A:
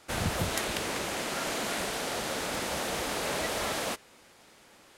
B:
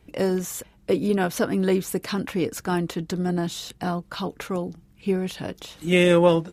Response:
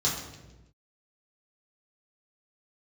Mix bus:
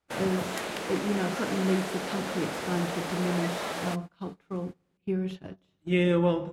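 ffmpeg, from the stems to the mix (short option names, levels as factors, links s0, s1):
-filter_complex "[0:a]highpass=200,volume=1[s0];[1:a]highshelf=f=11000:g=-9.5,volume=0.422,asplit=2[s1][s2];[s2]volume=0.133[s3];[2:a]atrim=start_sample=2205[s4];[s3][s4]afir=irnorm=-1:irlink=0[s5];[s0][s1][s5]amix=inputs=3:normalize=0,agate=range=0.0708:threshold=0.0158:ratio=16:detection=peak,highshelf=f=3400:g=-8"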